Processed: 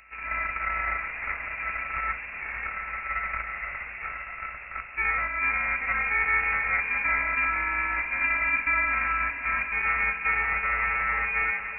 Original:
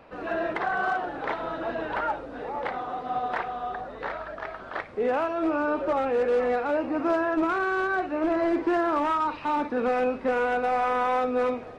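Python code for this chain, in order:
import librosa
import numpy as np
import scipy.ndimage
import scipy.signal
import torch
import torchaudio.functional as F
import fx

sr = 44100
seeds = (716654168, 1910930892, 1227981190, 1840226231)

p1 = np.r_[np.sort(x[:len(x) // 32 * 32].reshape(-1, 32), axis=1).ravel(), x[len(x) // 32 * 32:]]
p2 = fx.freq_invert(p1, sr, carrier_hz=2700)
p3 = fx.peak_eq(p2, sr, hz=350.0, db=-7.0, octaves=1.9)
y = p3 + fx.echo_diffused(p3, sr, ms=462, feedback_pct=57, wet_db=-8, dry=0)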